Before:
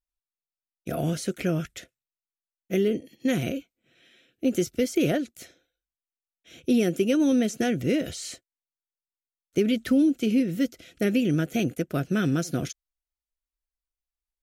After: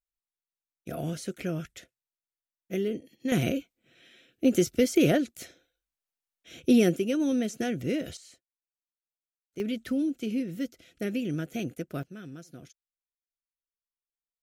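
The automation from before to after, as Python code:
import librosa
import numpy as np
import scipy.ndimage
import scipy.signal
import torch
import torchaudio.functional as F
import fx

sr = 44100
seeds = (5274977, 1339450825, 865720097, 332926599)

y = fx.gain(x, sr, db=fx.steps((0.0, -6.0), (3.32, 1.5), (6.96, -5.0), (8.17, -16.0), (9.6, -7.5), (12.03, -19.0)))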